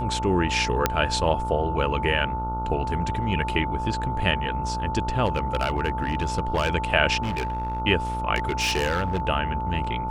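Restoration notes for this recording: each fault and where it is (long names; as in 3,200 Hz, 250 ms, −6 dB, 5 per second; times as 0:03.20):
mains buzz 60 Hz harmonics 24 −31 dBFS
whistle 880 Hz −28 dBFS
0:00.86: click −4 dBFS
0:05.25–0:06.70: clipping −18 dBFS
0:07.22–0:07.80: clipping −23 dBFS
0:08.35–0:09.25: clipping −20 dBFS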